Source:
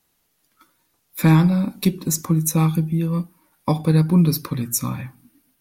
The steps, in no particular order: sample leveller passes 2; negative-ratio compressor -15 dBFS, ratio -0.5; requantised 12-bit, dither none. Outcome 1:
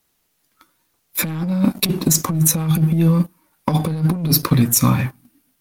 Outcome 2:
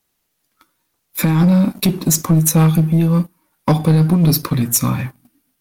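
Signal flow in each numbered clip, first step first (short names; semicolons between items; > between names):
sample leveller > requantised > negative-ratio compressor; negative-ratio compressor > sample leveller > requantised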